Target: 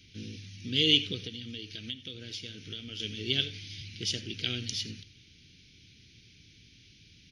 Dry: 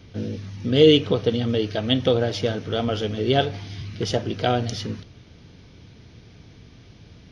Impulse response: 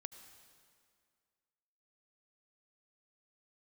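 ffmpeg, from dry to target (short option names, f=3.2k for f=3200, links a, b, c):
-filter_complex "[0:a]firequalizer=gain_entry='entry(340,0);entry(680,-23);entry(980,-24);entry(1400,-5);entry(2400,13)':delay=0.05:min_phase=1,asettb=1/sr,asplit=3[a][b][c];[a]atrim=end=1.264[d];[b]atrim=start=1.26:end=3,asetpts=PTS-STARTPTS,afade=t=in:d=0.004:c=qsin,afade=t=out:st=1.736:d=0.004:c=qsin,acompressor=threshold=-25dB:ratio=4[e];[c]atrim=start=2.996[f];[d][e]acrossfade=d=0.004:c1=hsin:c2=qsin[g];[g][f]acrossfade=d=0.004:c1=qsin:c2=hsin[h];[1:a]atrim=start_sample=2205,atrim=end_sample=4410[i];[h][i]afir=irnorm=-1:irlink=0,volume=-8dB"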